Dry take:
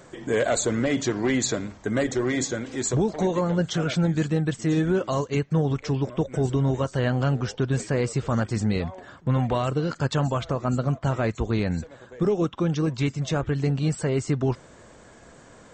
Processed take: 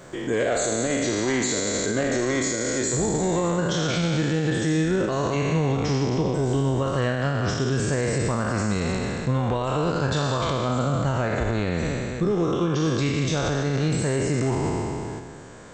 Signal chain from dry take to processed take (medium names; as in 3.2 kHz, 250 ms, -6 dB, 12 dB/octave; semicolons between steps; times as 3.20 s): spectral sustain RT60 2.30 s; in parallel at -2.5 dB: level held to a coarse grid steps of 19 dB; on the sum: peak limiter -15.5 dBFS, peak gain reduction 12.5 dB